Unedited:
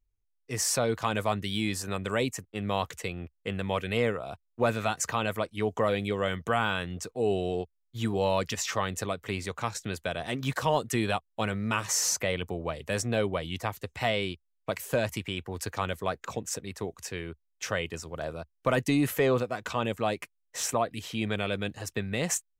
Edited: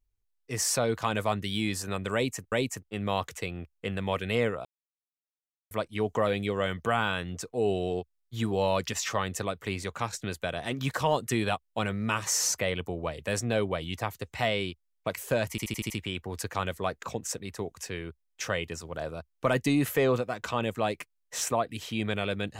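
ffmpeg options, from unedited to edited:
-filter_complex "[0:a]asplit=9[a][b][c][d][e][f][g][h][i];[a]atrim=end=2.522[j];[b]atrim=start=2.138:end=4.27,asetpts=PTS-STARTPTS,afade=t=out:st=2.128:d=0.004:c=hsin[k];[c]atrim=start=4.27:end=5.33,asetpts=PTS-STARTPTS,volume=0[l];[d]atrim=start=5.33:end=15.202,asetpts=PTS-STARTPTS,afade=t=in:d=0.004:c=hsin[m];[e]atrim=start=15.118:end=15.202[n];[f]atrim=start=15.118:end=15.202[o];[g]atrim=start=15.118:end=15.202[p];[h]atrim=start=15.118:end=15.202[q];[i]atrim=start=15.118[r];[k][l][m]concat=n=3:v=0:a=1[s];[j][s]acrossfade=d=0.004:c1=hsin:c2=hsin[t];[t][n]acrossfade=d=0.004:c1=hsin:c2=hsin[u];[u][o]acrossfade=d=0.004:c1=hsin:c2=hsin[v];[v][p]acrossfade=d=0.004:c1=hsin:c2=hsin[w];[w][q]acrossfade=d=0.004:c1=hsin:c2=hsin[x];[x][r]acrossfade=d=0.004:c1=hsin:c2=hsin"

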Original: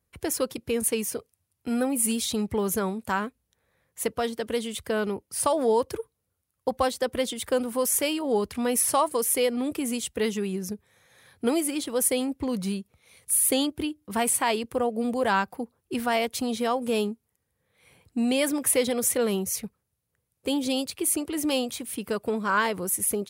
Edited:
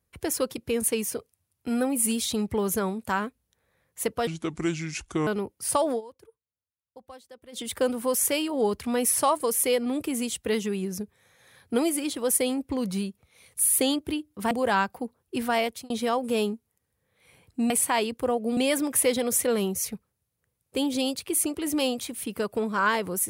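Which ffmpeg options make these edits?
-filter_complex "[0:a]asplit=9[a][b][c][d][e][f][g][h][i];[a]atrim=end=4.274[j];[b]atrim=start=4.27:end=4.98,asetpts=PTS-STARTPTS,asetrate=31311,aresample=44100[k];[c]atrim=start=4.976:end=5.72,asetpts=PTS-STARTPTS,afade=t=out:st=0.604:d=0.14:c=qsin:silence=0.0841395[l];[d]atrim=start=5.72:end=7.23,asetpts=PTS-STARTPTS,volume=-21.5dB[m];[e]atrim=start=7.23:end=14.222,asetpts=PTS-STARTPTS,afade=t=in:d=0.14:c=qsin:silence=0.0841395[n];[f]atrim=start=15.088:end=16.48,asetpts=PTS-STARTPTS,afade=t=out:st=1.112:d=0.28[o];[g]atrim=start=16.48:end=18.282,asetpts=PTS-STARTPTS,afade=t=in:d=0.004:c=hsin[p];[h]atrim=start=14.218:end=15.092[q];[i]atrim=start=18.278[r];[j][k]acrossfade=d=0.004:c1=hsin:c2=hsin[s];[l][m][n]concat=n=3:v=0:a=1[t];[s][t]acrossfade=d=0.004:c1=hsin:c2=hsin[u];[o][p]concat=n=2:v=0:a=1[v];[u][v]acrossfade=d=0.004:c1=hsin:c2=hsin[w];[w][q]acrossfade=d=0.004:c1=hsin:c2=hsin[x];[x][r]acrossfade=d=0.004:c1=hsin:c2=hsin"

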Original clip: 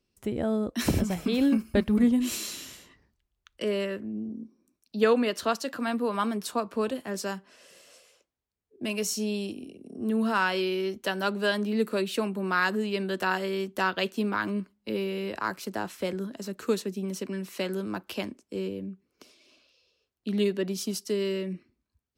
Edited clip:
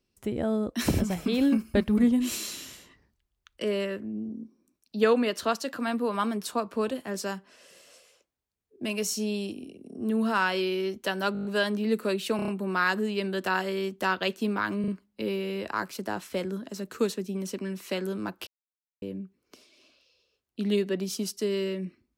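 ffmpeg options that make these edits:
-filter_complex "[0:a]asplit=15[a][b][c][d][e][f][g][h][i][j][k][l][m][n][o];[a]atrim=end=11.352[p];[b]atrim=start=11.328:end=11.352[q];[c]atrim=start=11.328:end=11.352[r];[d]atrim=start=11.328:end=11.352[s];[e]atrim=start=11.328:end=11.352[t];[f]atrim=start=11.328:end=11.352[u];[g]atrim=start=11.328:end=12.272[v];[h]atrim=start=12.238:end=12.272[w];[i]atrim=start=12.238:end=12.272[x];[j]atrim=start=12.238:end=12.272[y];[k]atrim=start=12.238:end=14.602[z];[l]atrim=start=14.558:end=14.602[aa];[m]atrim=start=14.558:end=18.15,asetpts=PTS-STARTPTS,afade=t=out:st=3.588:d=0.004:c=hsin[ab];[n]atrim=start=18.15:end=18.7,asetpts=PTS-STARTPTS,volume=0[ac];[o]atrim=start=18.7,asetpts=PTS-STARTPTS,afade=t=in:d=0.004:c=hsin[ad];[p][q]acrossfade=d=0.004:c1=hsin:c2=hsin[ae];[ae][r]acrossfade=d=0.004:c1=hsin:c2=hsin[af];[af][s]acrossfade=d=0.004:c1=hsin:c2=hsin[ag];[ag][t]acrossfade=d=0.004:c1=hsin:c2=hsin[ah];[ah][u]acrossfade=d=0.004:c1=hsin:c2=hsin[ai];[ai][v]acrossfade=d=0.004:c1=hsin:c2=hsin[aj];[aj][w]acrossfade=d=0.004:c1=hsin:c2=hsin[ak];[ak][x]acrossfade=d=0.004:c1=hsin:c2=hsin[al];[al][y]acrossfade=d=0.004:c1=hsin:c2=hsin[am];[am][z]acrossfade=d=0.004:c1=hsin:c2=hsin[an];[an][aa]acrossfade=d=0.004:c1=hsin:c2=hsin[ao];[ab][ac][ad]concat=n=3:v=0:a=1[ap];[ao][ap]acrossfade=d=0.004:c1=hsin:c2=hsin"

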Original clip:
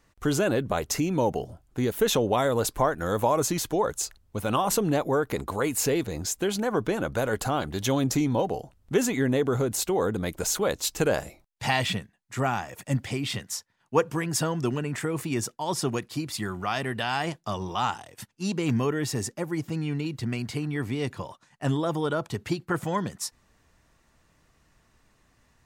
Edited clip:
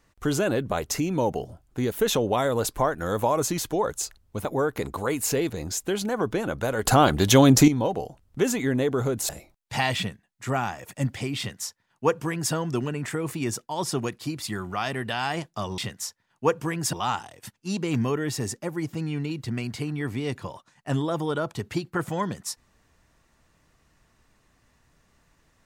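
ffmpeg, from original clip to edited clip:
-filter_complex "[0:a]asplit=7[a][b][c][d][e][f][g];[a]atrim=end=4.452[h];[b]atrim=start=4.988:end=7.392[i];[c]atrim=start=7.388:end=8.222,asetpts=PTS-STARTPTS,volume=9.5dB[j];[d]atrim=start=8.218:end=9.832[k];[e]atrim=start=11.188:end=17.682[l];[f]atrim=start=13.278:end=14.432[m];[g]atrim=start=17.678[n];[h][i]acrossfade=d=0.004:c1=hsin:c2=hsin[o];[o][j]acrossfade=d=0.004:c1=hsin:c2=hsin[p];[p][k]acrossfade=d=0.004:c1=hsin:c2=hsin[q];[q][l]acrossfade=d=0.004:c1=hsin:c2=hsin[r];[r][m]acrossfade=d=0.004:c1=hsin:c2=hsin[s];[s][n]acrossfade=d=0.004:c1=hsin:c2=hsin"

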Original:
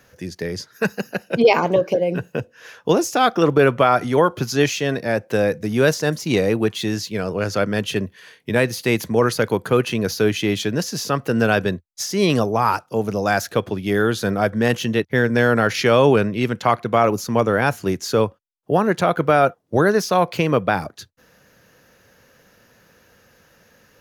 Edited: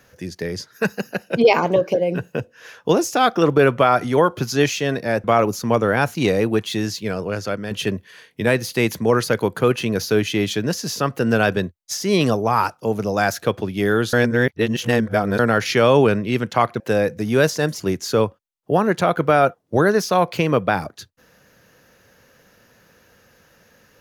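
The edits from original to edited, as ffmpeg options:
-filter_complex "[0:a]asplit=8[a][b][c][d][e][f][g][h];[a]atrim=end=5.242[i];[b]atrim=start=16.888:end=17.802[j];[c]atrim=start=6.238:end=7.8,asetpts=PTS-STARTPTS,afade=t=out:st=0.912:d=0.65:silence=0.398107[k];[d]atrim=start=7.8:end=14.222,asetpts=PTS-STARTPTS,afade=t=in:d=0.004:c=hsin:silence=0.398107[l];[e]atrim=start=14.218:end=15.482,asetpts=PTS-STARTPTS,areverse[m];[f]atrim=start=15.478:end=16.892[n];[g]atrim=start=5.238:end=6.242[o];[h]atrim=start=17.798[p];[i][j]acrossfade=d=0.004:c1=hsin:c2=hsin[q];[k][l]concat=n=2:v=0:a=1[r];[q][r]acrossfade=d=0.004:c1=hsin:c2=hsin[s];[s][m]acrossfade=d=0.004:c1=hsin:c2=hsin[t];[t][n]acrossfade=d=0.004:c1=hsin:c2=hsin[u];[u][o]acrossfade=d=0.004:c1=hsin:c2=hsin[v];[v][p]acrossfade=d=0.004:c1=hsin:c2=hsin"

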